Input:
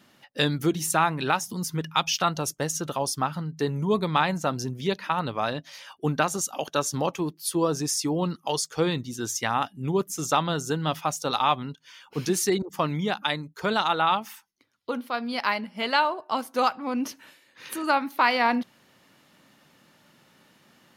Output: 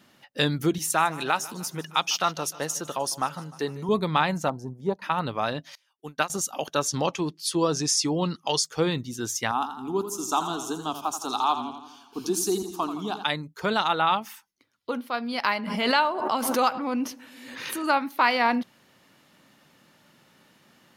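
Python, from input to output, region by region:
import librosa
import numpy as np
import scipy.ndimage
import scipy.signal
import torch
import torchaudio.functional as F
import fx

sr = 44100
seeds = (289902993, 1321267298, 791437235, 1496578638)

y = fx.chain(x, sr, fx.highpass(hz=340.0, slope=6),
    fx.echo_feedback(ms=152, feedback_pct=56, wet_db=-19), at=(0.78, 3.89))
y = fx.chain(y, sr, fx.curve_eq(hz=(380.0, 580.0, 870.0, 1400.0, 2700.0, 8600.0, 13000.0), db=(0, 3, 9, -7, -21, -7, -12)),
    fx.clip_hard(threshold_db=-15.5),
    fx.upward_expand(threshold_db=-39.0, expansion=1.5), at=(4.48, 5.02))
y = fx.chain(y, sr, fx.tilt_eq(slope=2.0),
    fx.upward_expand(threshold_db=-38.0, expansion=2.5), at=(5.75, 6.3))
y = fx.chain(y, sr, fx.lowpass(hz=5500.0, slope=12),
    fx.high_shelf(hz=3400.0, db=11.5), at=(6.88, 8.63))
y = fx.chain(y, sr, fx.fixed_phaser(hz=530.0, stages=6),
    fx.echo_warbled(ms=84, feedback_pct=57, rate_hz=2.8, cents=75, wet_db=-10.0), at=(9.51, 13.24))
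y = fx.chain(y, sr, fx.echo_filtered(ms=108, feedback_pct=62, hz=1000.0, wet_db=-21.0),
    fx.pre_swell(db_per_s=40.0), at=(15.44, 17.89))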